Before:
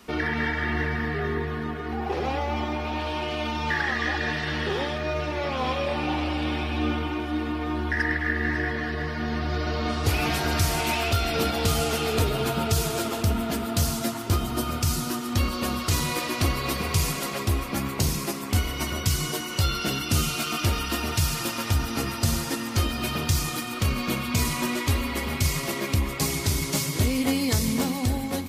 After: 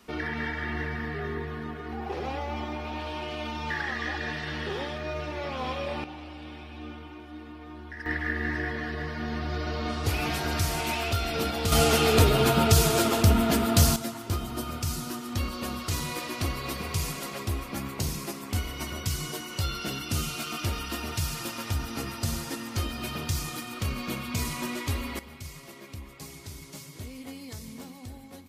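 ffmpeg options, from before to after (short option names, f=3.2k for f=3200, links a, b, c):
-af "asetnsamples=n=441:p=0,asendcmd='6.04 volume volume -15dB;8.06 volume volume -4dB;11.72 volume volume 4dB;13.96 volume volume -6dB;25.19 volume volume -17.5dB',volume=-5.5dB"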